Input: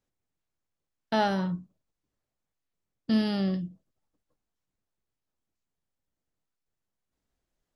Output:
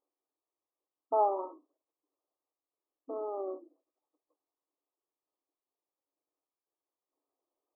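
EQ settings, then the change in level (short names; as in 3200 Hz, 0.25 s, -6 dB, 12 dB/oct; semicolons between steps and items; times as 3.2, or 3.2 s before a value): brick-wall FIR band-pass 270–1300 Hz; 0.0 dB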